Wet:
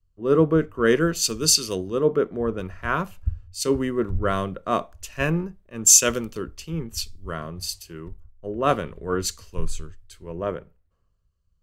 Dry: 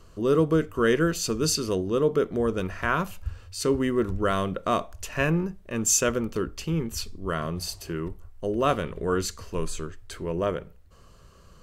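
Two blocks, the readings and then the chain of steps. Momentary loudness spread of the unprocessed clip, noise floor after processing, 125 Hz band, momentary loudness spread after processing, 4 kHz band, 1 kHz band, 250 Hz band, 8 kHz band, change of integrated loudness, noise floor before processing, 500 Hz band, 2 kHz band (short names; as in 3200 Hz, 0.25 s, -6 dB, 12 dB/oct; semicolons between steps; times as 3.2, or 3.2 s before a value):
12 LU, -67 dBFS, +0.5 dB, 16 LU, +6.0 dB, +1.0 dB, +0.5 dB, +8.5 dB, +4.0 dB, -52 dBFS, +1.0 dB, +1.0 dB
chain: three-band expander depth 100%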